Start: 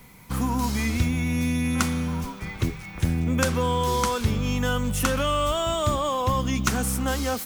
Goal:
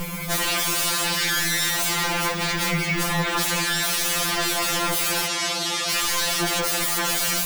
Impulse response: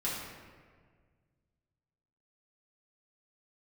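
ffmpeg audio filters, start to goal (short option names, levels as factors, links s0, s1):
-filter_complex "[0:a]alimiter=limit=0.126:level=0:latency=1:release=18,aeval=exprs='0.126*sin(PI/2*8.91*val(0)/0.126)':c=same,asettb=1/sr,asplit=3[s0][s1][s2];[s0]atrim=end=5.264[s3];[s1]atrim=start=5.26:end=5.9,asetpts=PTS-STARTPTS,afade=t=in:d=0.004:c=qsin,afade=t=out:st=0.636:d=0.004:c=qsin,highpass=130,lowpass=6700[s4];[s2]atrim=start=5.896[s5];[s3][s4]acrossfade=d=0.004:c1=hsin:c2=qsin[s6];[s6][s5]acrossfade=d=0.004:c1=qsin:c2=hsin,afftfilt=real='re*2.83*eq(mod(b,8),0)':imag='im*2.83*eq(mod(b,8),0)':win_size=2048:overlap=0.75"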